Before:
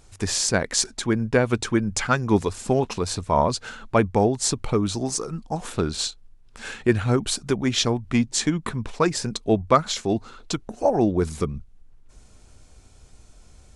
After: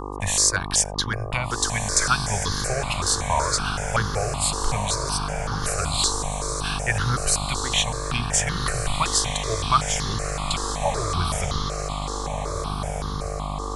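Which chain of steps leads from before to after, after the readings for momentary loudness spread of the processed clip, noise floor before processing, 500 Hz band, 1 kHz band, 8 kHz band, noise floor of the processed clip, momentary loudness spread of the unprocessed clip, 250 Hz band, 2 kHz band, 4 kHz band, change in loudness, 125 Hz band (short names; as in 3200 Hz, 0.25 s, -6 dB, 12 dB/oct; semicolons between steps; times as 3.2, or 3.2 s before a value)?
8 LU, -51 dBFS, -6.0 dB, +2.0 dB, +5.5 dB, -29 dBFS, 9 LU, -9.5 dB, +3.0 dB, +4.0 dB, 0.0 dB, 0.0 dB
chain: gate -37 dBFS, range -19 dB; passive tone stack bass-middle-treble 10-0-10; in parallel at +3 dB: compressor, threshold -33 dBFS, peak gain reduction 14 dB; on the sum: buzz 50 Hz, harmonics 24, -35 dBFS -2 dB/oct; on a send: diffused feedback echo 1.587 s, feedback 41%, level -5.5 dB; on the sum: step phaser 5.3 Hz 640–2400 Hz; gain +5.5 dB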